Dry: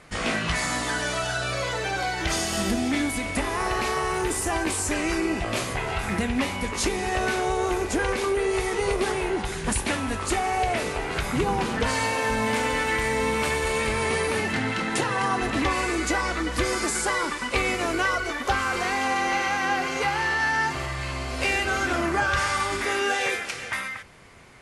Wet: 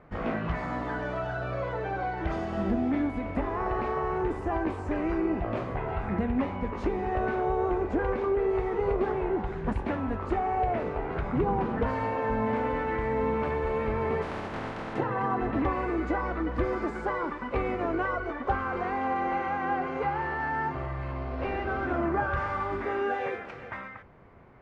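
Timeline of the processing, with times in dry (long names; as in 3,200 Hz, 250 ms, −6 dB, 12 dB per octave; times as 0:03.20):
0:14.21–0:14.95: compressing power law on the bin magnitudes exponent 0.21
0:21.12–0:21.86: variable-slope delta modulation 32 kbit/s
whole clip: low-pass filter 1,100 Hz 12 dB per octave; level −1.5 dB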